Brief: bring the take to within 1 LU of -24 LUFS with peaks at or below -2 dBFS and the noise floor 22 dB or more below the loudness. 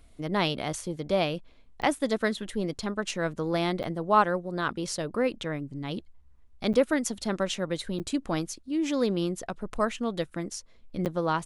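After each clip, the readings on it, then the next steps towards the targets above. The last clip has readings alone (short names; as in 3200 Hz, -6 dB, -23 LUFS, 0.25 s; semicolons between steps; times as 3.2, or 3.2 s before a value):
dropouts 5; longest dropout 8.9 ms; loudness -29.5 LUFS; peak -9.0 dBFS; loudness target -24.0 LUFS
-> interpolate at 1.82/3.83/6.73/7.99/11.05, 8.9 ms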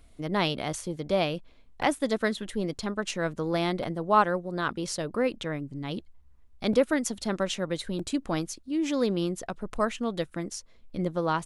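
dropouts 0; loudness -29.5 LUFS; peak -9.0 dBFS; loudness target -24.0 LUFS
-> gain +5.5 dB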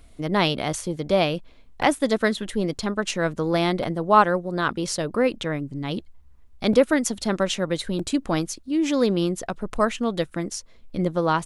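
loudness -24.0 LUFS; peak -3.5 dBFS; noise floor -49 dBFS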